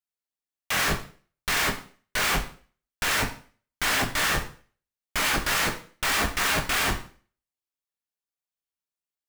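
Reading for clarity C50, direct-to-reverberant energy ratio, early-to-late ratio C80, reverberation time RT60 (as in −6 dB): 10.5 dB, 3.5 dB, 15.0 dB, 0.45 s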